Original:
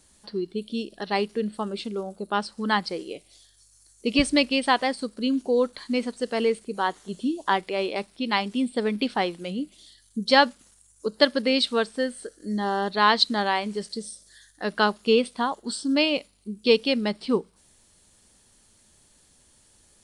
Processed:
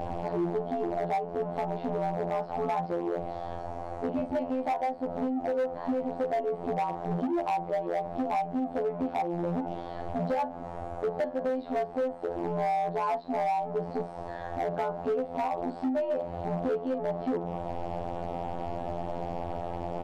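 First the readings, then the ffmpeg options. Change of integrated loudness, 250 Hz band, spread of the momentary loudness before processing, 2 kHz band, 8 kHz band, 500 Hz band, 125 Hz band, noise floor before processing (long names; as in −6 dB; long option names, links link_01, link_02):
−6.5 dB, −6.0 dB, 13 LU, −16.0 dB, below −20 dB, −3.5 dB, +2.5 dB, −60 dBFS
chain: -filter_complex "[0:a]aeval=exprs='val(0)+0.5*0.0708*sgn(val(0))':channel_layout=same,afftfilt=real='hypot(re,im)*cos(PI*b)':imag='0':win_size=2048:overlap=0.75,lowpass=frequency=730:width_type=q:width=4.9,acompressor=threshold=-28dB:ratio=8,asplit=2[link_01][link_02];[link_02]adelay=41,volume=-10dB[link_03];[link_01][link_03]amix=inputs=2:normalize=0,volume=26.5dB,asoftclip=hard,volume=-26.5dB,volume=2.5dB"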